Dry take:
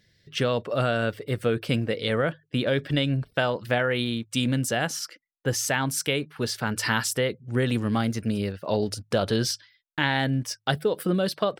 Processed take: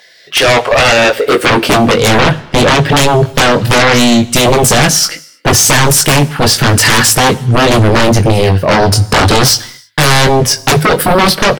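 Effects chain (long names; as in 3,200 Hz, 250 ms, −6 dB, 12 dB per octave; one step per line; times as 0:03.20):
high-pass filter sweep 750 Hz → 110 Hz, 0:00.99–0:02.08
double-tracking delay 21 ms −6 dB
sine wavefolder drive 19 dB, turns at −4.5 dBFS
on a send: convolution reverb, pre-delay 3 ms, DRR 16.5 dB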